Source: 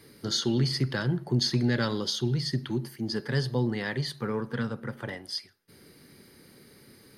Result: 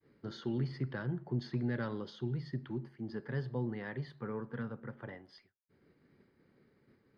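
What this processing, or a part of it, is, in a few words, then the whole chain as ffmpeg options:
hearing-loss simulation: -af "lowpass=1900,agate=range=-33dB:threshold=-51dB:ratio=3:detection=peak,volume=-9dB"

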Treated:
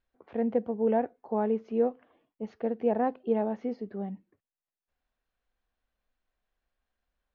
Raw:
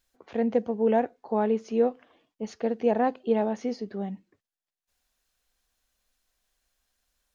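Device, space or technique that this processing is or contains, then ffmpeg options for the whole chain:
phone in a pocket: -af "lowpass=3400,highshelf=frequency=2500:gain=-10.5,volume=-2.5dB"

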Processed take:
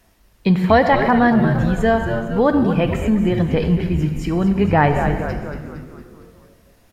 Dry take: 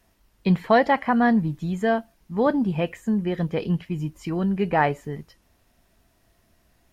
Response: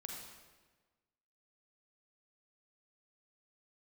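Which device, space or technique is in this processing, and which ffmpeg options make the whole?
ducked reverb: -filter_complex "[0:a]asettb=1/sr,asplit=3[link_01][link_02][link_03];[link_01]atrim=end=4.684[link_04];[link_02]atrim=start=4.68:end=5.1,asetpts=PTS-STARTPTS,afade=type=in:duration=0.004:curve=qsin,afade=type=out:start_time=0.416:duration=0.004:curve=qsin,bass=frequency=250:gain=8,treble=frequency=4000:gain=-1[link_05];[link_03]atrim=start=5.096[link_06];[link_04][link_05]acrossfade=duration=0.004:curve1=hsin:curve2=qsin[link_07];[link_07][link_06]acrossfade=duration=0.004:curve1=qsin:curve2=hsin,asplit=8[link_08][link_09][link_10][link_11][link_12][link_13][link_14][link_15];[link_09]adelay=229,afreqshift=-100,volume=-9.5dB[link_16];[link_10]adelay=458,afreqshift=-200,volume=-14.5dB[link_17];[link_11]adelay=687,afreqshift=-300,volume=-19.6dB[link_18];[link_12]adelay=916,afreqshift=-400,volume=-24.6dB[link_19];[link_13]adelay=1145,afreqshift=-500,volume=-29.6dB[link_20];[link_14]adelay=1374,afreqshift=-600,volume=-34.7dB[link_21];[link_15]adelay=1603,afreqshift=-700,volume=-39.7dB[link_22];[link_08][link_16][link_17][link_18][link_19][link_20][link_21][link_22]amix=inputs=8:normalize=0,asplit=3[link_23][link_24][link_25];[1:a]atrim=start_sample=2205[link_26];[link_24][link_26]afir=irnorm=-1:irlink=0[link_27];[link_25]apad=whole_len=376217[link_28];[link_27][link_28]sidechaincompress=threshold=-22dB:ratio=8:attack=12:release=101,volume=3dB[link_29];[link_23][link_29]amix=inputs=2:normalize=0,volume=2dB"

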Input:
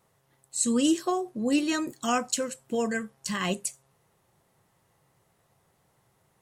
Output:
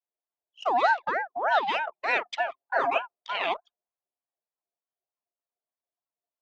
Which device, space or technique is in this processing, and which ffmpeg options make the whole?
voice changer toy: -filter_complex "[0:a]aeval=exprs='val(0)*sin(2*PI*860*n/s+860*0.45/3.3*sin(2*PI*3.3*n/s))':channel_layout=same,highpass=600,equalizer=frequency=680:width_type=q:width=4:gain=7,equalizer=frequency=1400:width_type=q:width=4:gain=-4,equalizer=frequency=2700:width_type=q:width=4:gain=4,lowpass=frequency=3600:width=0.5412,lowpass=frequency=3600:width=1.3066,asettb=1/sr,asplit=3[link_01][link_02][link_03];[link_01]atrim=end=2.464[link_04];[link_02]atrim=start=2.46:end=2.98,asetpts=PTS-STARTPTS,afade=type=in:duration=0.004:curve=qsin,afade=type=out:start_time=0.516:duration=0.004:curve=qsin,aecho=1:1:7.4:0.79,atrim=end_sample=22932[link_05];[link_03]atrim=start=2.976[link_06];[link_04][link_05]acrossfade=duration=0.004:curve1=hsin:curve2=qsin[link_07];[link_07][link_06]acrossfade=duration=0.004:curve1=qsin:curve2=hsin,anlmdn=0.251,volume=4dB"

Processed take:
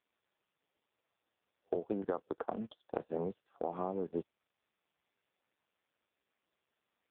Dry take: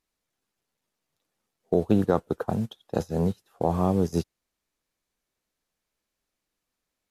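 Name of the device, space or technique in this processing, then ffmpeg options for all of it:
voicemail: -af "highpass=310,lowpass=3100,acompressor=threshold=-29dB:ratio=6,volume=-2dB" -ar 8000 -c:a libopencore_amrnb -b:a 5150

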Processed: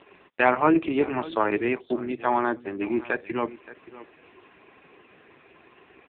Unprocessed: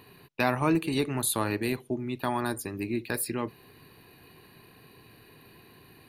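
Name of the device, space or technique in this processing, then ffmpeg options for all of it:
satellite phone: -filter_complex "[0:a]asplit=3[link_01][link_02][link_03];[link_01]afade=type=out:start_time=0.71:duration=0.02[link_04];[link_02]highshelf=frequency=4600:gain=-2,afade=type=in:start_time=0.71:duration=0.02,afade=type=out:start_time=2.35:duration=0.02[link_05];[link_03]afade=type=in:start_time=2.35:duration=0.02[link_06];[link_04][link_05][link_06]amix=inputs=3:normalize=0,highpass=320,lowpass=3400,aecho=1:1:575:0.141,volume=8.5dB" -ar 8000 -c:a libopencore_amrnb -b:a 4750

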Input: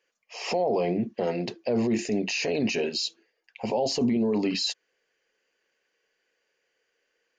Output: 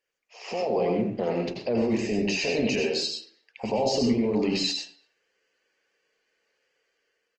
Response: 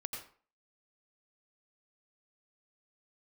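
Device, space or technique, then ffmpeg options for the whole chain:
speakerphone in a meeting room: -filter_complex "[0:a]asettb=1/sr,asplit=3[link_01][link_02][link_03];[link_01]atrim=end=1.714[link_04];[link_02]atrim=start=1.71:end=2.3,asetpts=PTS-STARTPTS,afade=type=in:duration=0.004:curve=qsin,afade=type=out:start_time=0.586:duration=0.004:curve=qsin,lowpass=5500[link_05];[link_03]atrim=start=2.296[link_06];[link_04][link_05]acrossfade=duration=0.004:curve1=hsin:curve2=qsin[link_07];[link_07][link_06]acrossfade=duration=0.004:curve1=qsin:curve2=hsin[link_08];[1:a]atrim=start_sample=2205[link_09];[link_08][link_09]afir=irnorm=-1:irlink=0,asplit=2[link_10][link_11];[link_11]adelay=230,highpass=300,lowpass=3400,asoftclip=type=hard:threshold=-24dB,volume=-26dB[link_12];[link_10][link_12]amix=inputs=2:normalize=0,dynaudnorm=framelen=110:gausssize=11:maxgain=7dB,volume=-5dB" -ar 48000 -c:a libopus -b:a 20k

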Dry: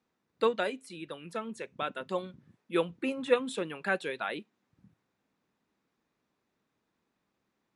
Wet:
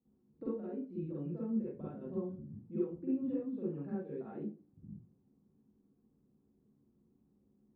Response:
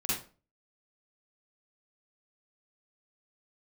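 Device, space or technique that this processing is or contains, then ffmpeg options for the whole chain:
television next door: -filter_complex "[0:a]acompressor=threshold=-42dB:ratio=4,lowpass=330[link_01];[1:a]atrim=start_sample=2205[link_02];[link_01][link_02]afir=irnorm=-1:irlink=0,volume=3.5dB"

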